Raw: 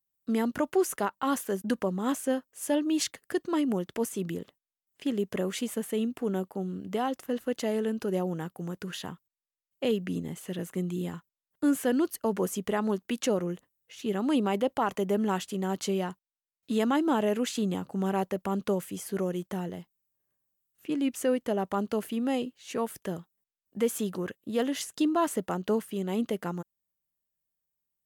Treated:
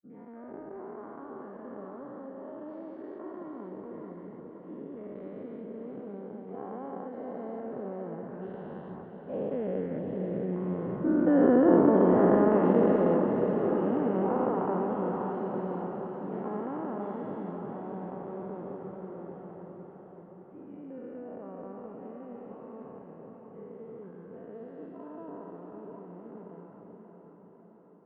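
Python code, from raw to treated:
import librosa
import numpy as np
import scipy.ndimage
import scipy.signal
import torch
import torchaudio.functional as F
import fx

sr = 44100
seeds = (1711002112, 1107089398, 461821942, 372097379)

p1 = fx.spec_dilate(x, sr, span_ms=480)
p2 = fx.doppler_pass(p1, sr, speed_mps=11, closest_m=9.6, pass_at_s=11.8)
p3 = scipy.signal.sosfilt(scipy.signal.bessel(4, 950.0, 'lowpass', norm='mag', fs=sr, output='sos'), p2)
y = p3 + fx.echo_diffused(p3, sr, ms=578, feedback_pct=60, wet_db=-5.0, dry=0)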